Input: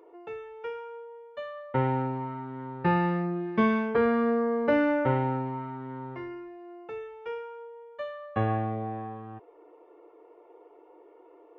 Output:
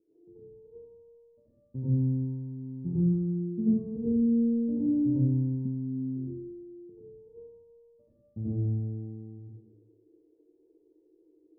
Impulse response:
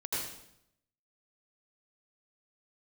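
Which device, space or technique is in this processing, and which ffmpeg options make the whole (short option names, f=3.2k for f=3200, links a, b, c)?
next room: -filter_complex "[0:a]lowpass=f=260:w=0.5412,lowpass=f=260:w=1.3066[a];[1:a]atrim=start_sample=2205[b];[a][b]afir=irnorm=-1:irlink=0,asettb=1/sr,asplit=3[c][d][e];[c]atrim=end=5.654[f];[d]atrim=start=5.65:end=6.9,asetpts=PTS-STARTPTS,afade=t=in:d=0.004:c=qsin,afade=t=out:st=1.246:d=0.004:c=qsin,equalizer=f=220:t=o:w=0.64:g=14[g];[e]atrim=start=6.896[h];[f][g]acrossfade=d=0.004:c1=hsin:c2=qsin[i];[i][h]acrossfade=d=0.004:c1=qsin:c2=hsin,volume=-1.5dB"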